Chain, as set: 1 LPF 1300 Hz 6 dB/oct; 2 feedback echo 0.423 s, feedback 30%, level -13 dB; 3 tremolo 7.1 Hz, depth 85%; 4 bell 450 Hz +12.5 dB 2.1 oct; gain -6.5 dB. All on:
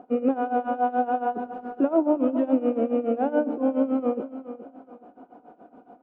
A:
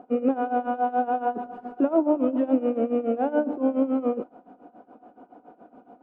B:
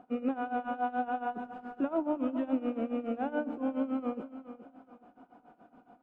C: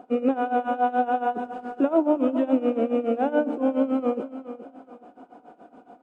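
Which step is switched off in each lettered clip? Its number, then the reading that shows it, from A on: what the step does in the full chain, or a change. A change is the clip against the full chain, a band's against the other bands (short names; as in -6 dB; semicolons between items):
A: 2, momentary loudness spread change -5 LU; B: 4, 2 kHz band +5.0 dB; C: 1, 2 kHz band +3.0 dB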